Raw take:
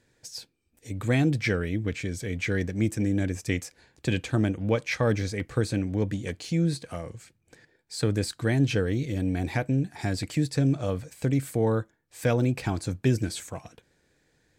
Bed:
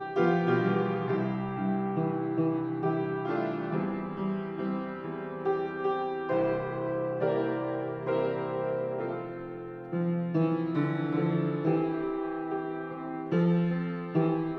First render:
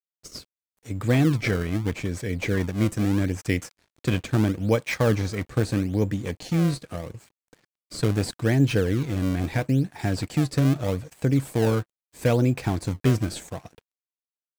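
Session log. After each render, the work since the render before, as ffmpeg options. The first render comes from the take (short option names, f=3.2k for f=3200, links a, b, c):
-filter_complex "[0:a]asplit=2[a][b];[b]acrusher=samples=29:mix=1:aa=0.000001:lfo=1:lforange=46.4:lforate=0.78,volume=-6dB[c];[a][c]amix=inputs=2:normalize=0,aeval=exprs='sgn(val(0))*max(abs(val(0))-0.00224,0)':c=same"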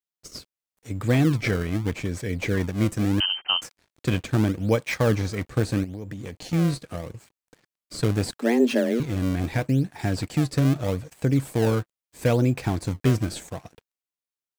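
-filter_complex "[0:a]asettb=1/sr,asplit=3[a][b][c];[a]atrim=end=3.204[d];[b]atrim=start=3.2:end=3.62,asetpts=PTS-STARTPTS,afade=t=in:d=0.004:c=qsin,afade=t=out:st=0.416:d=0.004:c=qsin,lowpass=f=2.7k:t=q:w=0.5098,lowpass=f=2.7k:t=q:w=0.6013,lowpass=f=2.7k:t=q:w=0.9,lowpass=f=2.7k:t=q:w=2.563,afreqshift=-3200[e];[c]atrim=start=3.616[f];[d][e]acrossfade=d=0.004:c1=hsin:c2=qsin[g];[g][f]acrossfade=d=0.004:c1=qsin:c2=hsin,asettb=1/sr,asplit=3[h][i][j];[h]atrim=end=5.844[k];[i]atrim=start=5.84:end=6.53,asetpts=PTS-STARTPTS,afade=t=in:d=0.004:c=qsin,afade=t=out:st=0.686:d=0.004:c=qsin,acompressor=threshold=-30dB:ratio=12:attack=3.2:release=140:knee=1:detection=peak[l];[j]atrim=start=6.526[m];[k][l]acrossfade=d=0.004:c1=hsin:c2=qsin[n];[n][m]acrossfade=d=0.004:c1=qsin:c2=hsin,asettb=1/sr,asplit=3[o][p][q];[o]atrim=end=8.384[r];[p]atrim=start=8.38:end=9,asetpts=PTS-STARTPTS,afade=t=in:d=0.004:c=qsin,afade=t=out:st=0.616:d=0.004:c=qsin,afreqshift=120[s];[q]atrim=start=8.996[t];[r][s]acrossfade=d=0.004:c1=hsin:c2=qsin[u];[u][t]acrossfade=d=0.004:c1=qsin:c2=hsin"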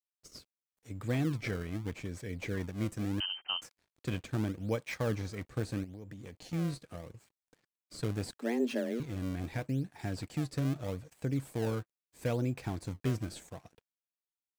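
-af "volume=-11.5dB"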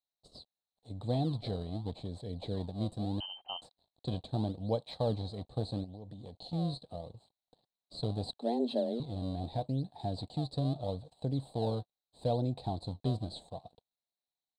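-af "firequalizer=gain_entry='entry(220,0);entry(330,-4);entry(730,9);entry(1400,-18);entry(2300,-21);entry(4000,12);entry(5800,-25);entry(8400,-6);entry(12000,-23)':delay=0.05:min_phase=1"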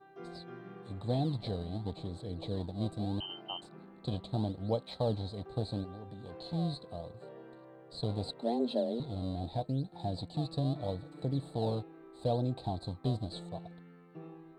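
-filter_complex "[1:a]volume=-22dB[a];[0:a][a]amix=inputs=2:normalize=0"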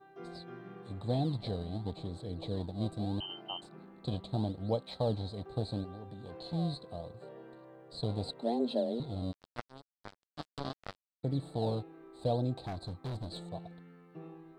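-filter_complex "[0:a]asplit=3[a][b][c];[a]afade=t=out:st=9.31:d=0.02[d];[b]acrusher=bits=3:mix=0:aa=0.5,afade=t=in:st=9.31:d=0.02,afade=t=out:st=11.23:d=0.02[e];[c]afade=t=in:st=11.23:d=0.02[f];[d][e][f]amix=inputs=3:normalize=0,asettb=1/sr,asplit=3[g][h][i];[g]atrim=end=12.544[j];[h]atrim=start=12.54:end=13.48,asetpts=PTS-STARTPTS,afade=t=in:d=0.004:c=qsin,afade=t=out:st=0.936:d=0.004:c=qsin,volume=35.5dB,asoftclip=hard,volume=-35.5dB[k];[i]atrim=start=13.476[l];[j][k]acrossfade=d=0.004:c1=hsin:c2=qsin[m];[m][l]acrossfade=d=0.004:c1=qsin:c2=hsin"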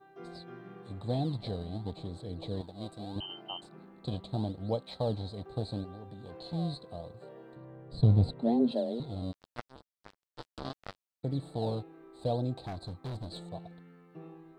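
-filter_complex "[0:a]asettb=1/sr,asplit=3[a][b][c];[a]atrim=end=2.614[d];[b]atrim=start=2.61:end=3.16,asetpts=PTS-STARTPTS,afade=t=in:d=0.004:c=qsin,afade=t=out:st=0.546:d=0.004:c=qsin,lowshelf=f=310:g=-10.5[e];[c]atrim=start=3.156[f];[d][e]acrossfade=d=0.004:c1=hsin:c2=qsin[g];[g][f]acrossfade=d=0.004:c1=qsin:c2=hsin,asettb=1/sr,asplit=3[h][i][j];[h]atrim=end=7.564[k];[i]atrim=start=7.56:end=8.72,asetpts=PTS-STARTPTS,afade=t=in:d=0.004:c=qsin,afade=t=out:st=1.156:d=0.004:c=qsin,bass=f=250:g=15,treble=f=4k:g=-8[l];[j]atrim=start=8.716[m];[k][l]acrossfade=d=0.004:c1=hsin:c2=qsin[n];[n][m]acrossfade=d=0.004:c1=qsin:c2=hsin,asettb=1/sr,asplit=3[o][p][q];[o]atrim=end=9.764[r];[p]atrim=start=9.76:end=10.63,asetpts=PTS-STARTPTS,afade=t=in:d=0.004:c=qsin,afade=t=out:st=0.866:d=0.004:c=qsin,aeval=exprs='val(0)*sin(2*PI*180*n/s)':c=same[s];[q]atrim=start=10.626[t];[r][s]acrossfade=d=0.004:c1=hsin:c2=qsin[u];[u][t]acrossfade=d=0.004:c1=qsin:c2=hsin"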